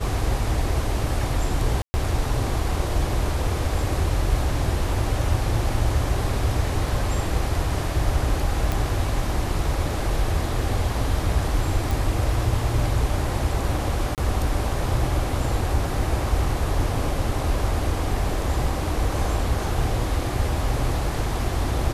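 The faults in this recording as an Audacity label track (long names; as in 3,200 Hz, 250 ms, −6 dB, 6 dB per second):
1.820000	1.940000	drop-out 120 ms
8.720000	8.720000	click
11.910000	11.910000	click
14.150000	14.180000	drop-out 28 ms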